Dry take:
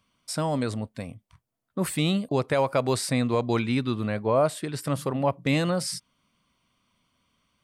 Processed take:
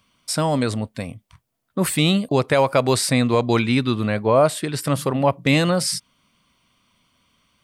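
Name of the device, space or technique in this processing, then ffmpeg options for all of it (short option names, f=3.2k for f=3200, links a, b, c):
presence and air boost: -af "equalizer=f=3.1k:t=o:w=1.9:g=2.5,highshelf=f=9.7k:g=4,volume=6dB"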